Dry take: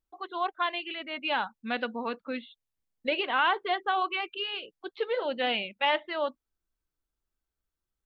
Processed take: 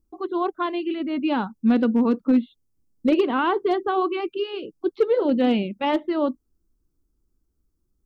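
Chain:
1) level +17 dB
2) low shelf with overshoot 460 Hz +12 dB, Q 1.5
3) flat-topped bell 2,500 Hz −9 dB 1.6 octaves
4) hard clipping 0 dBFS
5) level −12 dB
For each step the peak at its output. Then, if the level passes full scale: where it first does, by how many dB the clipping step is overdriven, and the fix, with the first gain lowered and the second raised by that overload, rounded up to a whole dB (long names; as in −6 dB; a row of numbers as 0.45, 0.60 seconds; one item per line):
+3.5, +5.0, +4.0, 0.0, −12.0 dBFS
step 1, 4.0 dB
step 1 +13 dB, step 5 −8 dB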